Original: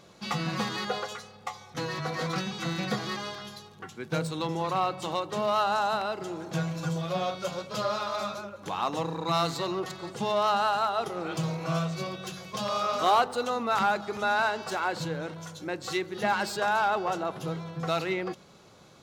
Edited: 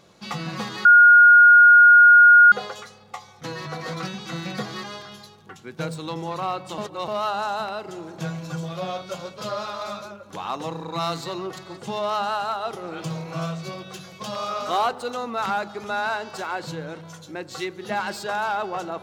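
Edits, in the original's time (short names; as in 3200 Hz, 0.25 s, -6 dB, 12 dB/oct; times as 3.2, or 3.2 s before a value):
0.85 add tone 1430 Hz -7.5 dBFS 1.67 s
5.11–5.41 reverse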